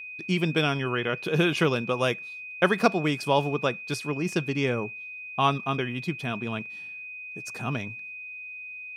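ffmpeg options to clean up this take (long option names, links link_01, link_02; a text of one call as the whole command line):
ffmpeg -i in.wav -af "bandreject=frequency=2500:width=30" out.wav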